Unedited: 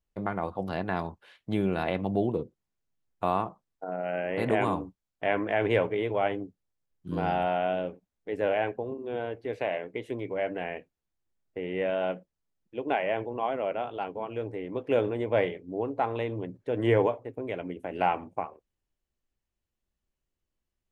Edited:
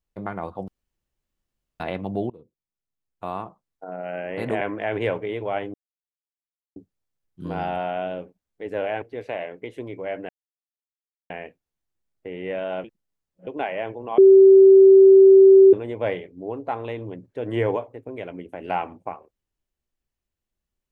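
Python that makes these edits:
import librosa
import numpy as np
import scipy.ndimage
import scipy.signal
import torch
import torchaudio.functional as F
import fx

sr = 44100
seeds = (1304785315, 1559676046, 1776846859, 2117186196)

y = fx.edit(x, sr, fx.room_tone_fill(start_s=0.68, length_s=1.12),
    fx.fade_in_from(start_s=2.3, length_s=1.72, floor_db=-20.5),
    fx.cut(start_s=4.61, length_s=0.69),
    fx.insert_silence(at_s=6.43, length_s=1.02),
    fx.cut(start_s=8.69, length_s=0.65),
    fx.insert_silence(at_s=10.61, length_s=1.01),
    fx.reverse_span(start_s=12.15, length_s=0.63),
    fx.bleep(start_s=13.49, length_s=1.55, hz=386.0, db=-7.0), tone=tone)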